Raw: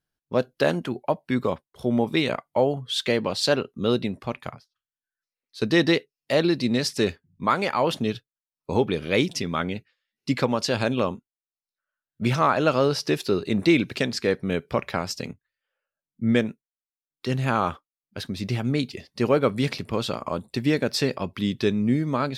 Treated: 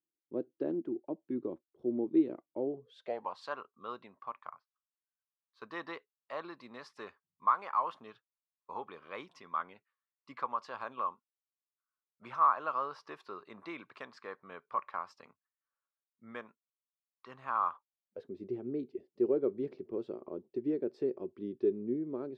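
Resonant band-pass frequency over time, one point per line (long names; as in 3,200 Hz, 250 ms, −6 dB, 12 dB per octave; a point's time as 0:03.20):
resonant band-pass, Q 7.1
0:02.67 330 Hz
0:03.38 1,100 Hz
0:17.69 1,100 Hz
0:18.34 370 Hz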